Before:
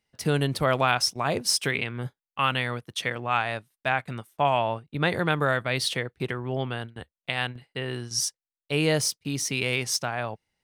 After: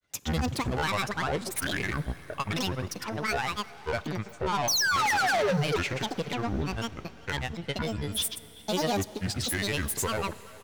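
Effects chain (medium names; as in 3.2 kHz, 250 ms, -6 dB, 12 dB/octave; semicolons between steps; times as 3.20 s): in parallel at -2.5 dB: peak limiter -18.5 dBFS, peak gain reduction 11.5 dB; on the sum: painted sound fall, 4.69–5.68 s, 250–5200 Hz -12 dBFS; saturation -23 dBFS, distortion -4 dB; granulator, pitch spread up and down by 12 st; speakerphone echo 390 ms, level -17 dB; on a send at -18 dB: reverberation RT60 5.5 s, pre-delay 39 ms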